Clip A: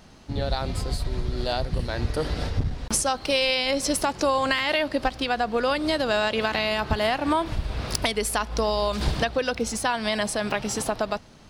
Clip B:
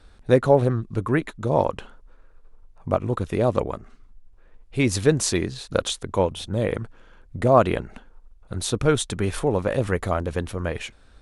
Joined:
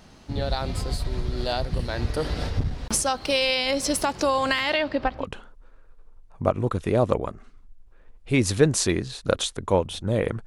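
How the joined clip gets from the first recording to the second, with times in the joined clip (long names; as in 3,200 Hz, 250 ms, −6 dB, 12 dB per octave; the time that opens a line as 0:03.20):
clip A
0:04.69–0:05.27: low-pass filter 7,300 Hz → 1,400 Hz
0:05.22: continue with clip B from 0:01.68, crossfade 0.10 s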